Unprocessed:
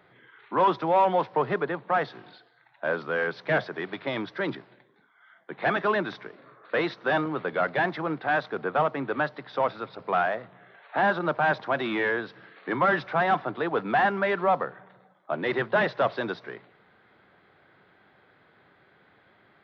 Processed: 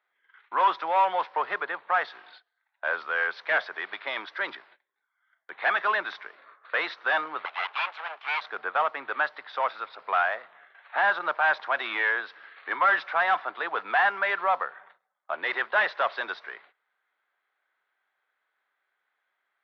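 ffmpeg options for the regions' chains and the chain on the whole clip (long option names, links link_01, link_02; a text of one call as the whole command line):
ffmpeg -i in.wav -filter_complex "[0:a]asettb=1/sr,asplit=3[link_01][link_02][link_03];[link_01]atrim=end=7.454[link_04];[link_02]atrim=start=7.45:end=8.41,asetpts=PTS-STARTPTS,afade=type=in:duration=0.004:curve=qsin,afade=type=out:start_time=0.956:duration=0.004:curve=qsin,aeval=exprs='abs(val(0))':channel_layout=same,acrusher=bits=8:dc=4:mix=0:aa=0.000001,highpass=frequency=330:width=0.5412,highpass=frequency=330:width=1.3066,equalizer=frequency=350:width_type=q:width=4:gain=-7,equalizer=frequency=500:width_type=q:width=4:gain=-7,equalizer=frequency=1900:width_type=q:width=4:gain=-5,lowpass=frequency=3600:width=0.5412,lowpass=frequency=3600:width=1.3066[link_05];[link_03]atrim=start=8.406[link_06];[link_04][link_05]acrossfade=duration=0.004:curve1=hsin:curve2=qsin[link_07];[link_07][link_06]acrossfade=duration=0.004:curve1=qsin:curve2=hsin,lowpass=frequency=2900:poles=1,agate=range=-19dB:threshold=-53dB:ratio=16:detection=peak,highpass=1100,volume=5.5dB" out.wav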